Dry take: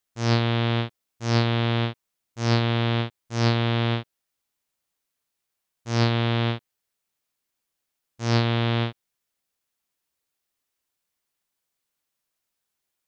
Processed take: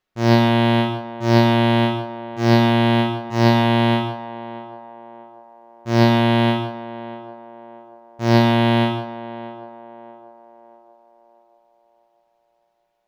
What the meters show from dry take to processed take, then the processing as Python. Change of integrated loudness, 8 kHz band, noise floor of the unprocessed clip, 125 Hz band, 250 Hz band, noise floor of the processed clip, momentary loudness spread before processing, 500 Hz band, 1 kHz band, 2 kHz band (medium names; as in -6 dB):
+6.5 dB, no reading, -82 dBFS, +4.0 dB, +10.5 dB, -67 dBFS, 9 LU, +9.5 dB, +10.5 dB, +6.5 dB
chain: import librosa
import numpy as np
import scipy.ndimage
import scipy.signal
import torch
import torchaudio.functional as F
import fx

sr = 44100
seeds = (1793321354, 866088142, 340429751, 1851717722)

y = scipy.ndimage.median_filter(x, 5, mode='constant')
y = fx.high_shelf(y, sr, hz=2300.0, db=-9.0)
y = y + 0.45 * np.pad(y, (int(5.4 * sr / 1000.0), 0))[:len(y)]
y = fx.echo_banded(y, sr, ms=635, feedback_pct=50, hz=650.0, wet_db=-12)
y = fx.rev_gated(y, sr, seeds[0], gate_ms=180, shape='flat', drr_db=5.0)
y = F.gain(torch.from_numpy(y), 9.0).numpy()